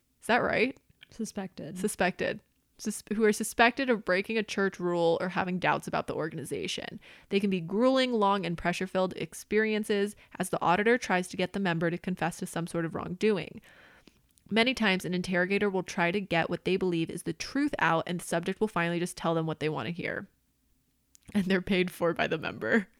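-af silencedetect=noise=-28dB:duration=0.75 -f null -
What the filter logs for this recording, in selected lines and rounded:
silence_start: 13.42
silence_end: 14.52 | silence_duration: 1.10
silence_start: 20.18
silence_end: 21.35 | silence_duration: 1.17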